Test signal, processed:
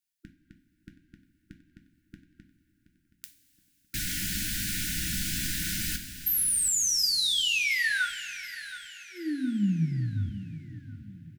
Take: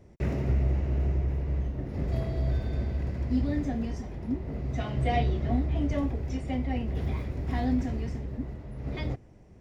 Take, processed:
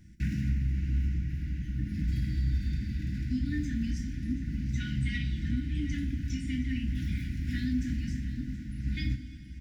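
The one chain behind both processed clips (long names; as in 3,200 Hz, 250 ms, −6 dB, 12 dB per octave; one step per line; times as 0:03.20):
high-shelf EQ 4,000 Hz +5.5 dB
downward compressor, threshold −26 dBFS
linear-phase brick-wall band-stop 330–1,400 Hz
on a send: repeating echo 724 ms, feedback 40%, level −15 dB
on the sum: coupled-rooms reverb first 0.31 s, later 4.7 s, from −18 dB, DRR 3.5 dB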